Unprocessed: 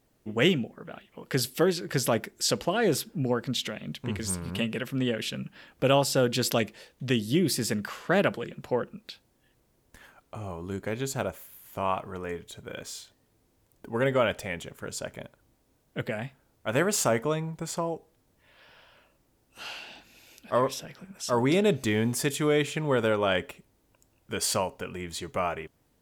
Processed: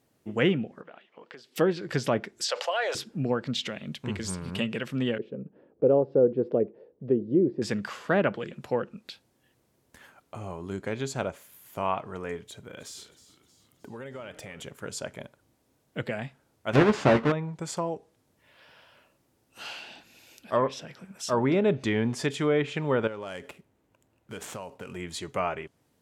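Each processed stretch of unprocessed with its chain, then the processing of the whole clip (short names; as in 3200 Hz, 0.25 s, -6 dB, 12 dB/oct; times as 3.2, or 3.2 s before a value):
0.81–1.56 HPF 390 Hz + compressor 12:1, threshold -41 dBFS + air absorption 170 m
2.44–2.95 Chebyshev high-pass 550 Hz, order 4 + fast leveller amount 50%
5.18–7.62 synth low-pass 440 Hz, resonance Q 3.2 + tilt +2 dB/oct
12.46–14.62 compressor, threshold -38 dBFS + frequency-shifting echo 0.313 s, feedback 52%, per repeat -94 Hz, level -15 dB
16.73–17.32 half-waves squared off + doubler 14 ms -8 dB
23.07–24.96 median filter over 9 samples + high shelf 8700 Hz +7 dB + compressor 5:1, threshold -35 dBFS
whole clip: HPF 85 Hz; treble ducked by the level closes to 2200 Hz, closed at -20 dBFS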